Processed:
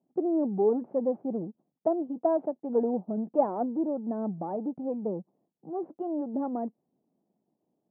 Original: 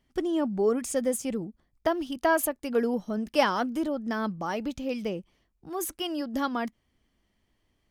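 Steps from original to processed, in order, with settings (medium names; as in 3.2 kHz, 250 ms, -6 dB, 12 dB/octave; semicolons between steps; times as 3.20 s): partial rectifier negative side -7 dB; elliptic band-pass 160–790 Hz, stop band 80 dB; trim +3.5 dB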